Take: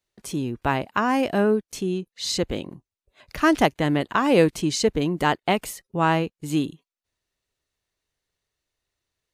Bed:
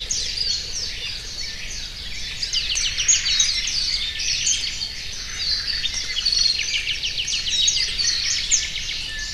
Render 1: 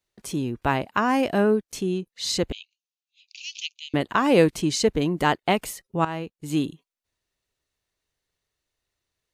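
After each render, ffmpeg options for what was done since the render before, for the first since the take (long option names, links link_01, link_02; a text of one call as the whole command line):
ffmpeg -i in.wav -filter_complex "[0:a]asettb=1/sr,asplit=3[link_01][link_02][link_03];[link_01]atrim=end=2.524[link_04];[link_02]atrim=start=2.52:end=3.94,asetpts=PTS-STARTPTS,afade=type=in:duration=0.004:curve=qsin,afade=type=out:start_time=1.416:duration=0.004:curve=qsin,asuperpass=centerf=4200:order=20:qfactor=0.92[link_05];[link_03]atrim=start=3.936[link_06];[link_04][link_05]acrossfade=duration=0.004:curve1=hsin:curve2=qsin[link_07];[link_07][link_06]acrossfade=duration=0.004:curve1=qsin:curve2=hsin,asplit=2[link_08][link_09];[link_08]atrim=end=6.05,asetpts=PTS-STARTPTS,afade=type=out:start_time=6.046:duration=0.004:curve=hsin:silence=0.188365[link_10];[link_09]atrim=start=6.05,asetpts=PTS-STARTPTS,afade=type=in:duration=0.59:silence=0.188365[link_11];[link_10][link_11]concat=n=2:v=0:a=1" out.wav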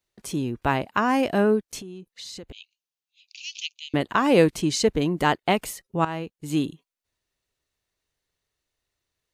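ffmpeg -i in.wav -filter_complex "[0:a]asettb=1/sr,asplit=3[link_01][link_02][link_03];[link_01]atrim=end=1.814[link_04];[link_02]atrim=start=1.81:end=3.43,asetpts=PTS-STARTPTS,afade=type=in:duration=0.004:curve=qsin,afade=type=out:start_time=1.616:duration=0.004:curve=qsin,acompressor=threshold=-36dB:ratio=8:attack=3.2:release=140:knee=1:detection=peak[link_05];[link_03]atrim=start=3.426[link_06];[link_04][link_05]acrossfade=duration=0.004:curve1=hsin:curve2=qsin[link_07];[link_07][link_06]acrossfade=duration=0.004:curve1=qsin:curve2=hsin" out.wav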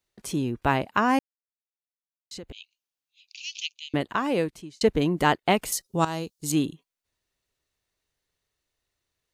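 ffmpeg -i in.wav -filter_complex "[0:a]asettb=1/sr,asplit=3[link_01][link_02][link_03];[link_01]atrim=end=5.724[link_04];[link_02]atrim=start=5.72:end=6.52,asetpts=PTS-STARTPTS,afade=type=in:duration=0.004:curve=qsin,afade=type=out:start_time=0.796:duration=0.004:curve=qsin,highshelf=frequency=3400:width_type=q:width=1.5:gain=10.5[link_05];[link_03]atrim=start=6.516[link_06];[link_04][link_05]acrossfade=duration=0.004:curve1=hsin:curve2=qsin[link_07];[link_07][link_06]acrossfade=duration=0.004:curve1=qsin:curve2=hsin,asplit=4[link_08][link_09][link_10][link_11];[link_08]atrim=end=1.19,asetpts=PTS-STARTPTS,afade=type=out:start_time=1.186:duration=0.004:curve=hsin[link_12];[link_09]atrim=start=1.19:end=2.31,asetpts=PTS-STARTPTS,volume=0[link_13];[link_10]atrim=start=2.31:end=4.81,asetpts=PTS-STARTPTS,afade=type=in:duration=0.004:curve=hsin,afade=type=out:start_time=1.4:duration=1.1[link_14];[link_11]atrim=start=4.81,asetpts=PTS-STARTPTS,afade=type=in:duration=0.004:curve=hsin[link_15];[link_12][link_13][link_14][link_15]concat=n=4:v=0:a=1" out.wav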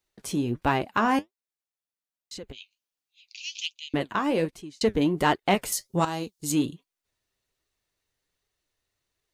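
ffmpeg -i in.wav -filter_complex "[0:a]flanger=delay=2.4:depth=8.1:regen=57:speed=1.3:shape=sinusoidal,asplit=2[link_01][link_02];[link_02]asoftclip=type=tanh:threshold=-22.5dB,volume=-3.5dB[link_03];[link_01][link_03]amix=inputs=2:normalize=0" out.wav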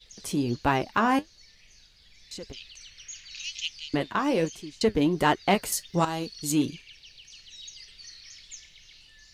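ffmpeg -i in.wav -i bed.wav -filter_complex "[1:a]volume=-25.5dB[link_01];[0:a][link_01]amix=inputs=2:normalize=0" out.wav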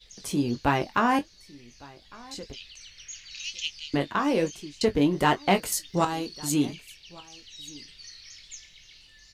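ffmpeg -i in.wav -filter_complex "[0:a]asplit=2[link_01][link_02];[link_02]adelay=21,volume=-9.5dB[link_03];[link_01][link_03]amix=inputs=2:normalize=0,aecho=1:1:1156:0.0668" out.wav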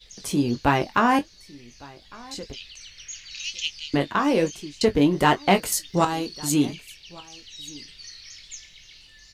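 ffmpeg -i in.wav -af "volume=3.5dB" out.wav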